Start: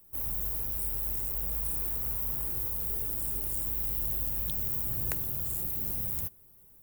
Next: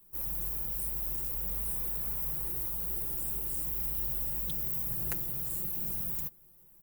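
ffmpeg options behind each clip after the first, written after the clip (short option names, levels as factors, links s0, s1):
-af "bandreject=f=630:w=12,aecho=1:1:5.8:0.86,volume=0.631"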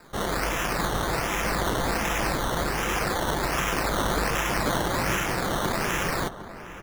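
-filter_complex "[0:a]acrusher=samples=14:mix=1:aa=0.000001:lfo=1:lforange=8.4:lforate=1.3,asplit=2[s0][s1];[s1]adelay=758,volume=0.251,highshelf=f=4000:g=-17.1[s2];[s0][s2]amix=inputs=2:normalize=0,volume=2.37"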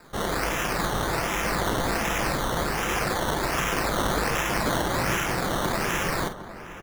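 -filter_complex "[0:a]asplit=2[s0][s1];[s1]adelay=49,volume=0.299[s2];[s0][s2]amix=inputs=2:normalize=0"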